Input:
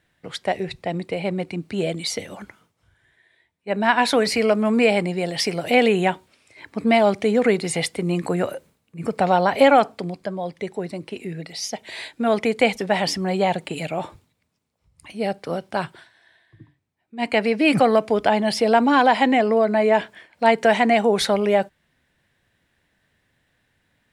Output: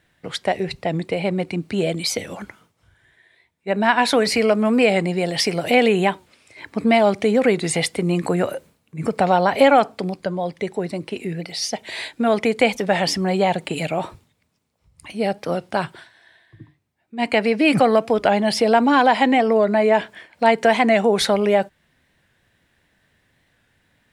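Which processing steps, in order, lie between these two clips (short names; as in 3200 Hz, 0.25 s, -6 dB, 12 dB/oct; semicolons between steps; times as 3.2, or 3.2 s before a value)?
in parallel at -2 dB: compressor, threshold -23 dBFS, peak gain reduction 13 dB; on the sum: record warp 45 rpm, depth 100 cents; gain -1 dB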